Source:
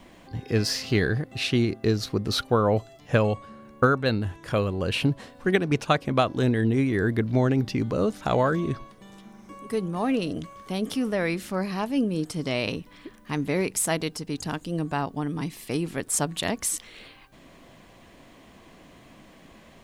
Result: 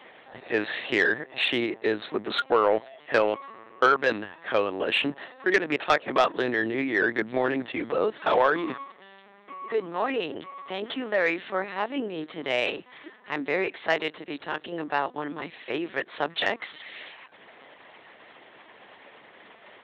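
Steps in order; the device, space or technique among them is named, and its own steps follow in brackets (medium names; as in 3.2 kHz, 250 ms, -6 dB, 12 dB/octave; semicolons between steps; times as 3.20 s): talking toy (LPC vocoder at 8 kHz pitch kept; high-pass 440 Hz 12 dB/octave; peaking EQ 1.8 kHz +6 dB 0.34 oct; saturation -15 dBFS, distortion -16 dB); trim +4.5 dB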